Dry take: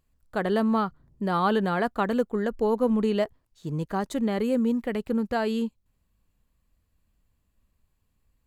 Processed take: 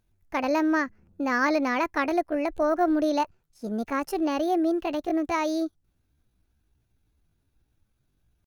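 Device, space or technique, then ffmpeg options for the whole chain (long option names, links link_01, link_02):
chipmunk voice: -af "asetrate=62367,aresample=44100,atempo=0.707107"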